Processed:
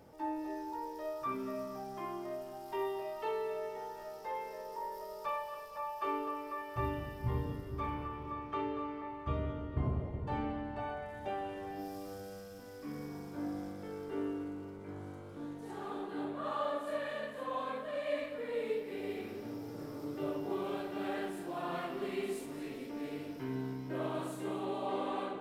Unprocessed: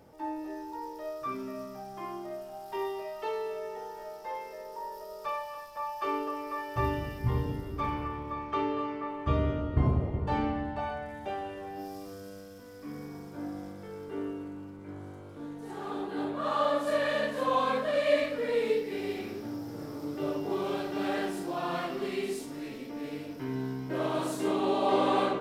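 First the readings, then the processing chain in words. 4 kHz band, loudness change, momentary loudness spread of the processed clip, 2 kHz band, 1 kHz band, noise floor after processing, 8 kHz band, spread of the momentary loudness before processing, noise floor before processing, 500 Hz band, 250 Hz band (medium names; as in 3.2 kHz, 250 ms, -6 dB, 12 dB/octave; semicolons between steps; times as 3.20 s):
-9.5 dB, -6.5 dB, 7 LU, -7.5 dB, -6.0 dB, -47 dBFS, -7.5 dB, 14 LU, -45 dBFS, -7.0 dB, -5.5 dB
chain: dynamic bell 5.3 kHz, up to -7 dB, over -58 dBFS, Q 1.6; gain riding within 5 dB 2 s; on a send: two-band feedback delay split 710 Hz, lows 466 ms, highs 224 ms, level -14 dB; on the sum: trim -6.5 dB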